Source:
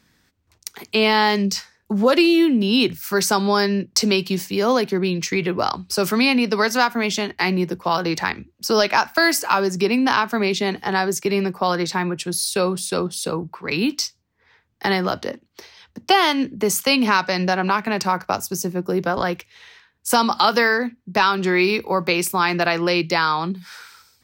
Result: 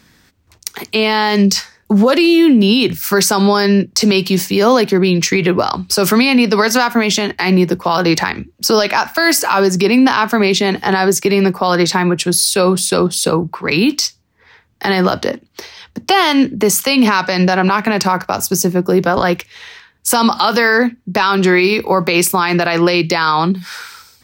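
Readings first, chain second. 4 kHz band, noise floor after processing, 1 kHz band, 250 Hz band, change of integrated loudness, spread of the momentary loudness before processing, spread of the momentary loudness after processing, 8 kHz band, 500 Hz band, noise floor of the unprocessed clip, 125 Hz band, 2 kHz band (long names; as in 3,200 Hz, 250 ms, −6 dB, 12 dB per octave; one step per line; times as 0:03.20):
+5.5 dB, −53 dBFS, +4.5 dB, +8.0 dB, +6.5 dB, 9 LU, 7 LU, +8.5 dB, +6.5 dB, −64 dBFS, +9.0 dB, +5.0 dB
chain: boost into a limiter +13.5 dB
level −3 dB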